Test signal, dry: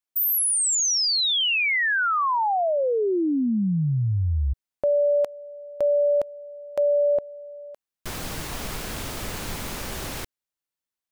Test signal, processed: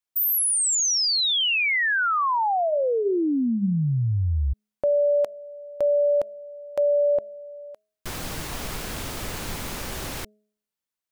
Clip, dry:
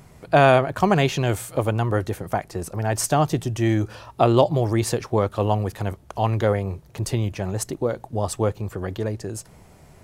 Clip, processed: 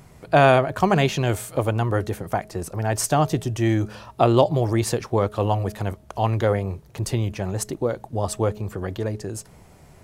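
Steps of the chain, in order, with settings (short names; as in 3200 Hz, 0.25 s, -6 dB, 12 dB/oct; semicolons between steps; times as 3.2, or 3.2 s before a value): de-hum 211 Hz, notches 3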